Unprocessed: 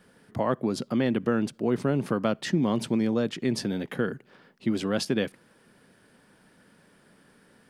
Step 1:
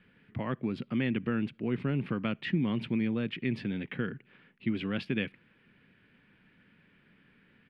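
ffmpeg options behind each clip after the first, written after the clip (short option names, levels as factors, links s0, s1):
-af "firequalizer=gain_entry='entry(100,0);entry(620,-13);entry(2400,5);entry(6100,-30)':delay=0.05:min_phase=1,volume=0.891"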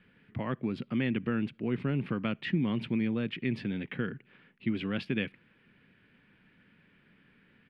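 -af anull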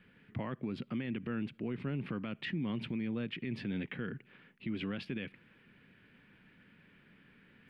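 -af "alimiter=level_in=1.68:limit=0.0631:level=0:latency=1:release=109,volume=0.596,areverse,acompressor=mode=upward:threshold=0.00126:ratio=2.5,areverse"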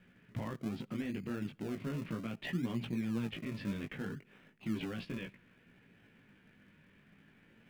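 -filter_complex "[0:a]flanger=delay=16.5:depth=3.6:speed=0.37,asplit=2[s0][s1];[s1]acrusher=samples=38:mix=1:aa=0.000001:lfo=1:lforange=38:lforate=0.62,volume=0.422[s2];[s0][s2]amix=inputs=2:normalize=0"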